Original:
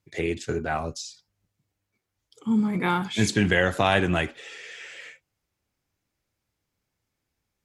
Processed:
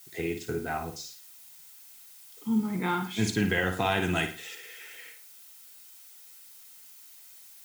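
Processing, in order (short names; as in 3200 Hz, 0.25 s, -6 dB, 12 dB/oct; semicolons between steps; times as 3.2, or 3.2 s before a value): 4.02–4.55 high shelf 3300 Hz +11.5 dB; added noise blue -46 dBFS; notch comb 570 Hz; on a send: flutter echo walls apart 9.3 m, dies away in 0.38 s; on the sum: gain -4.5 dB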